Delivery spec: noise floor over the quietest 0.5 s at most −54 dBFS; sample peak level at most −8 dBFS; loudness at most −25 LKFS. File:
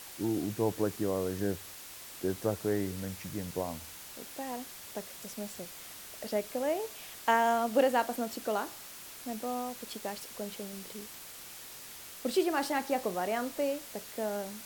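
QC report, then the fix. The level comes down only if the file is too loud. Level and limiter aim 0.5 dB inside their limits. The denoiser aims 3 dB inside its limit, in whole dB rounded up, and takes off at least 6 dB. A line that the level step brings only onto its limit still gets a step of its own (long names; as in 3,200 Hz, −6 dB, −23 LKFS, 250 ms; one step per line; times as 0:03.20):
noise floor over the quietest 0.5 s −47 dBFS: out of spec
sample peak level −13.0 dBFS: in spec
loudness −34.5 LKFS: in spec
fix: broadband denoise 10 dB, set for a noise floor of −47 dBFS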